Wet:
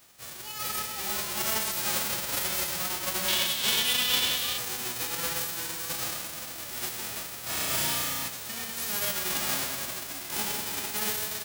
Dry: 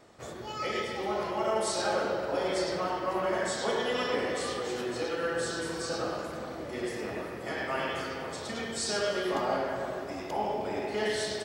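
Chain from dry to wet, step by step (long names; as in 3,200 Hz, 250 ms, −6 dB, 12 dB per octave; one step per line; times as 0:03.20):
spectral envelope flattened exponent 0.1
0:03.28–0:04.58: parametric band 3,300 Hz +12.5 dB 0.79 octaves
0:07.42–0:08.28: flutter between parallel walls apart 5.9 metres, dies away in 1.1 s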